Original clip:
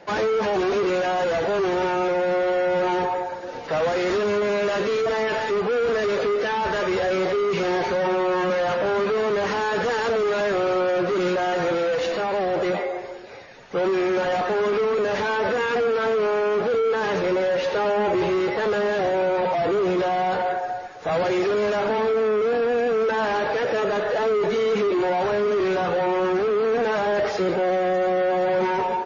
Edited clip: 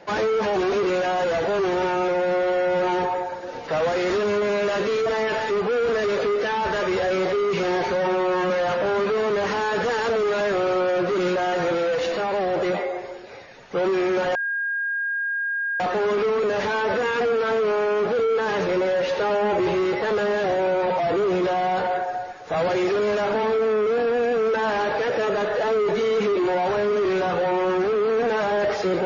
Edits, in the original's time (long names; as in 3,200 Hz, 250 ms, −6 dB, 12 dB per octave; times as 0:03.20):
0:14.35: insert tone 1,620 Hz −22.5 dBFS 1.45 s